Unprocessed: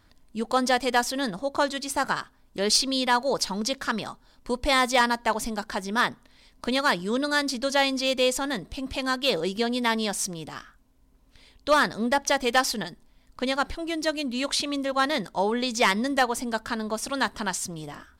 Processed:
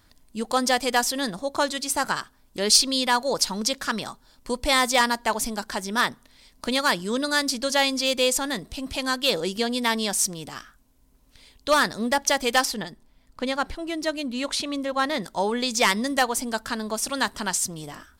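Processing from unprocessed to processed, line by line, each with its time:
0:12.65–0:15.22: high-shelf EQ 3,600 Hz −8.5 dB
whole clip: high-shelf EQ 5,100 Hz +9 dB

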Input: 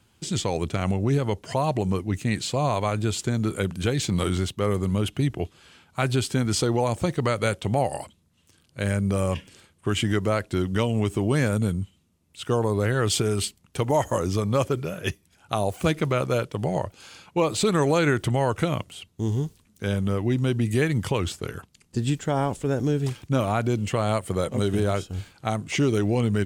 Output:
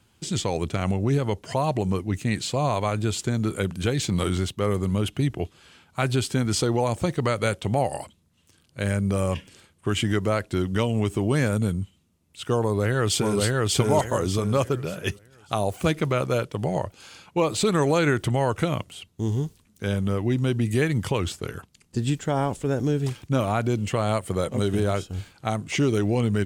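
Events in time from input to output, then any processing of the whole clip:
0:12.62–0:13.41: delay throw 590 ms, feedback 30%, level −0.5 dB

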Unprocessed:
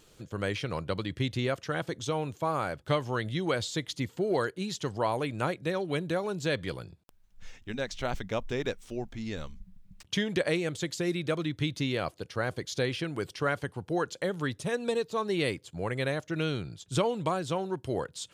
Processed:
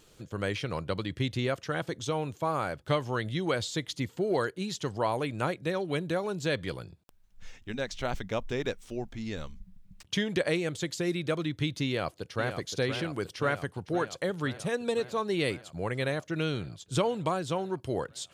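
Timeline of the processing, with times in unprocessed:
0:11.86–0:12.56: delay throw 520 ms, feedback 75%, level −8 dB

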